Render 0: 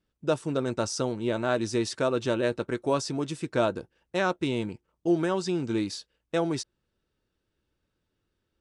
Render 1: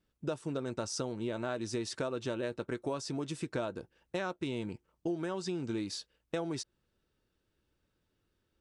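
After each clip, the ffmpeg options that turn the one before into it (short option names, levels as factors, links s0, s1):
-af "acompressor=threshold=0.0224:ratio=5"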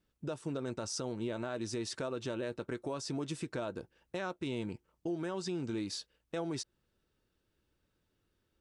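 -af "alimiter=level_in=1.58:limit=0.0631:level=0:latency=1:release=52,volume=0.631"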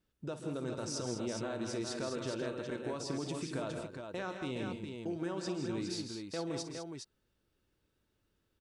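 -af "aecho=1:1:54|134|164|202|412:0.211|0.224|0.398|0.316|0.531,volume=0.794"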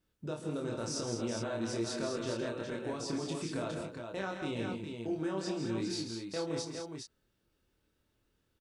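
-filter_complex "[0:a]asplit=2[s0][s1];[s1]adelay=26,volume=0.708[s2];[s0][s2]amix=inputs=2:normalize=0"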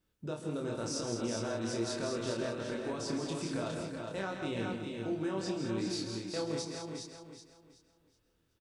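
-af "aecho=1:1:375|750|1125|1500:0.376|0.117|0.0361|0.0112"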